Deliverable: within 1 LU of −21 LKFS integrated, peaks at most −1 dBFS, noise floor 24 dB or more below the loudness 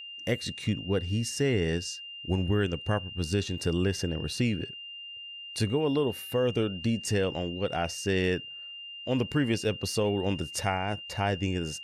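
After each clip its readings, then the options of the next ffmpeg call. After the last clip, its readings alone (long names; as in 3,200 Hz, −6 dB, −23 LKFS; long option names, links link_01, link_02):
interfering tone 2,800 Hz; level of the tone −40 dBFS; integrated loudness −29.5 LKFS; sample peak −12.5 dBFS; target loudness −21.0 LKFS
→ -af "bandreject=frequency=2800:width=30"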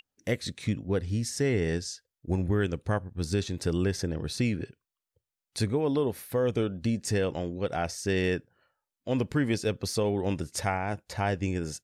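interfering tone none found; integrated loudness −30.0 LKFS; sample peak −13.0 dBFS; target loudness −21.0 LKFS
→ -af "volume=9dB"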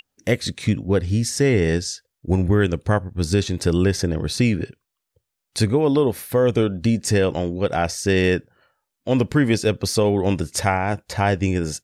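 integrated loudness −21.0 LKFS; sample peak −4.0 dBFS; background noise floor −81 dBFS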